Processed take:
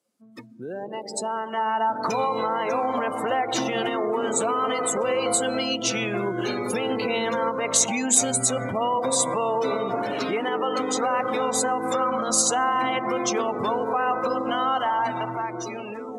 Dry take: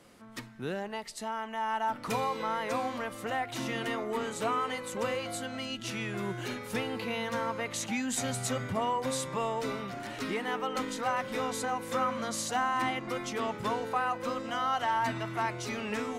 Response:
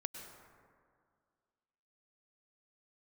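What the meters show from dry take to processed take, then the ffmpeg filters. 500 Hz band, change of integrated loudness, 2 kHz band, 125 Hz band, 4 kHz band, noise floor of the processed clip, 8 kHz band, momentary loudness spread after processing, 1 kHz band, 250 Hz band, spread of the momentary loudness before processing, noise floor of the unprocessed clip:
+9.5 dB, +9.0 dB, +5.0 dB, +2.5 dB, +8.0 dB, −36 dBFS, +15.5 dB, 8 LU, +7.5 dB, +7.0 dB, 6 LU, −44 dBFS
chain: -filter_complex "[0:a]asplit=2[link_01][link_02];[link_02]tiltshelf=frequency=1200:gain=9.5[link_03];[1:a]atrim=start_sample=2205,asetrate=36162,aresample=44100,lowshelf=frequency=370:gain=-7[link_04];[link_03][link_04]afir=irnorm=-1:irlink=0,volume=1dB[link_05];[link_01][link_05]amix=inputs=2:normalize=0,alimiter=limit=-23.5dB:level=0:latency=1:release=197,dynaudnorm=framelen=200:gausssize=13:maxgain=9dB,afftdn=noise_reduction=28:noise_floor=-34,highpass=frequency=78:width=0.5412,highpass=frequency=78:width=1.3066,bass=frequency=250:gain=-10,treble=frequency=4000:gain=13,bandreject=frequency=1900:width=12"

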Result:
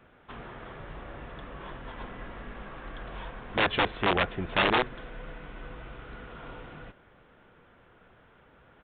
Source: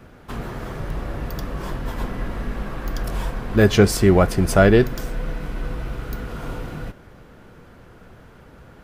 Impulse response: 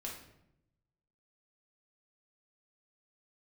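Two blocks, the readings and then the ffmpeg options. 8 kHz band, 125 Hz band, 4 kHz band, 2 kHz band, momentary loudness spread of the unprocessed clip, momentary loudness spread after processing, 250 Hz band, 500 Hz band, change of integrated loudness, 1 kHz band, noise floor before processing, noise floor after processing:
below −40 dB, −18.5 dB, −1.5 dB, −3.5 dB, 17 LU, 19 LU, −16.0 dB, −14.0 dB, −8.5 dB, −3.0 dB, −47 dBFS, −59 dBFS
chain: -af "aeval=exprs='(mod(2.37*val(0)+1,2)-1)/2.37':channel_layout=same,lowshelf=frequency=390:gain=-10,aresample=8000,aresample=44100,volume=-7dB"

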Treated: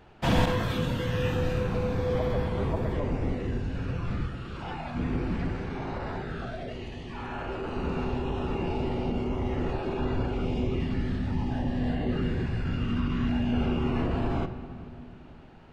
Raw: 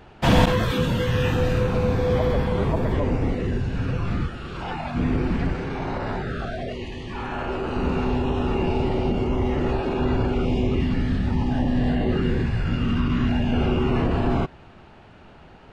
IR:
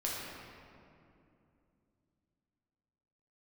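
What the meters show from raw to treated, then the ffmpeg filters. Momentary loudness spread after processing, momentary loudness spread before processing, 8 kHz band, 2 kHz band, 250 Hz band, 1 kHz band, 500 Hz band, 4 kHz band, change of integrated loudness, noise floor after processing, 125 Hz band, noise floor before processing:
10 LU, 8 LU, can't be measured, −6.5 dB, −6.0 dB, −6.5 dB, −6.5 dB, −6.5 dB, −6.5 dB, −46 dBFS, −6.0 dB, −47 dBFS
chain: -filter_complex "[0:a]asplit=2[link_01][link_02];[1:a]atrim=start_sample=2205[link_03];[link_02][link_03]afir=irnorm=-1:irlink=0,volume=-11.5dB[link_04];[link_01][link_04]amix=inputs=2:normalize=0,volume=-8.5dB"

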